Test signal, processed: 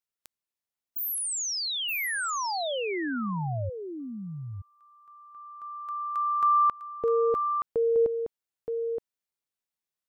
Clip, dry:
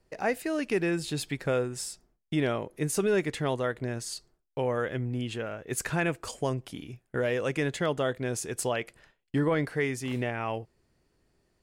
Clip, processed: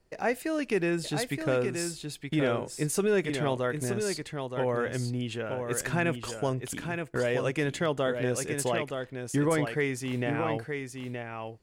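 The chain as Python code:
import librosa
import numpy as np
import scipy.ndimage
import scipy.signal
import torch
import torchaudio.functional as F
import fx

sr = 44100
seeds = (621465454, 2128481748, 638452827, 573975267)

y = x + 10.0 ** (-6.0 / 20.0) * np.pad(x, (int(922 * sr / 1000.0), 0))[:len(x)]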